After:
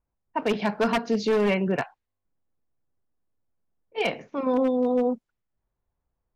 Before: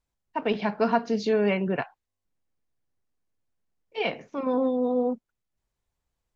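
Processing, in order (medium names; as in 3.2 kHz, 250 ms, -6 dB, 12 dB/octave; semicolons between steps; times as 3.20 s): wavefolder -17.5 dBFS; level-controlled noise filter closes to 1.3 kHz, open at -26 dBFS; trim +2 dB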